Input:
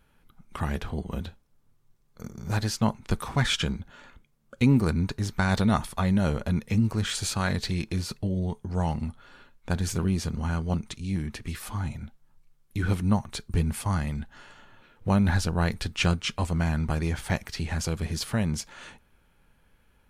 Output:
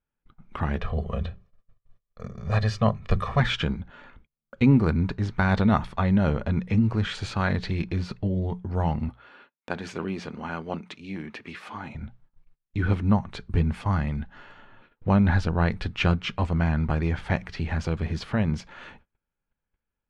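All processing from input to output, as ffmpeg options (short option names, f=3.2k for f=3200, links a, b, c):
-filter_complex "[0:a]asettb=1/sr,asplit=3[a][b][c];[a]atrim=end=0.804[d];[b]atrim=start=0.8:end=3.4,asetpts=PTS-STARTPTS,afade=t=in:d=0.004:c=qsin,afade=t=out:st=2.596:d=0.004:c=qsin,bandreject=f=50:t=h:w=6,bandreject=f=100:t=h:w=6,bandreject=f=150:t=h:w=6,bandreject=f=200:t=h:w=6,bandreject=f=250:t=h:w=6,bandreject=f=300:t=h:w=6,bandreject=f=350:t=h:w=6,bandreject=f=400:t=h:w=6,aecho=1:1:1.7:0.87,atrim=end_sample=114660[e];[c]atrim=start=3.396[f];[d][e]acrossfade=d=0.004:c1=hsin:c2=qsin[g];[g][f]acrossfade=d=0.004:c1=qsin:c2=hsin,asettb=1/sr,asplit=3[h][i][j];[h]atrim=end=9.094[k];[i]atrim=start=9.09:end=11.95,asetpts=PTS-STARTPTS,afade=t=in:d=0.004:c=qsin,afade=t=out:st=2.856:d=0.004:c=qsin,highpass=280,equalizer=f=2.5k:t=o:w=0.47:g=3[l];[j]atrim=start=11.946[m];[k][l]acrossfade=d=0.004:c1=hsin:c2=qsin[n];[n][m]acrossfade=d=0.004:c1=qsin:c2=hsin,lowpass=2.8k,bandreject=f=60:t=h:w=6,bandreject=f=120:t=h:w=6,bandreject=f=180:t=h:w=6,agate=range=-25dB:threshold=-55dB:ratio=16:detection=peak,volume=2.5dB"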